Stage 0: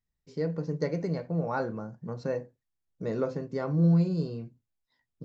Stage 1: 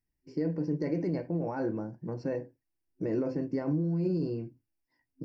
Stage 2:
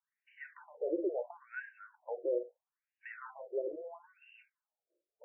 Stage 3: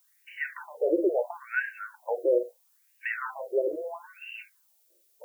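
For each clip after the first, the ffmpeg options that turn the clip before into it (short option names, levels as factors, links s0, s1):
-af "equalizer=f=3900:w=6.7:g=-13.5,alimiter=level_in=1.19:limit=0.0631:level=0:latency=1:release=23,volume=0.841,superequalizer=6b=3.16:10b=0.447:13b=0.316:15b=0.316"
-filter_complex "[0:a]acrossover=split=280|630|1900[s0][s1][s2][s3];[s1]acompressor=threshold=0.00562:ratio=6[s4];[s0][s4][s2][s3]amix=inputs=4:normalize=0,afftfilt=real='re*between(b*sr/1024,450*pow(2200/450,0.5+0.5*sin(2*PI*0.75*pts/sr))/1.41,450*pow(2200/450,0.5+0.5*sin(2*PI*0.75*pts/sr))*1.41)':imag='im*between(b*sr/1024,450*pow(2200/450,0.5+0.5*sin(2*PI*0.75*pts/sr))/1.41,450*pow(2200/450,0.5+0.5*sin(2*PI*0.75*pts/sr))*1.41)':win_size=1024:overlap=0.75,volume=2.24"
-af "crystalizer=i=7.5:c=0,volume=2.66"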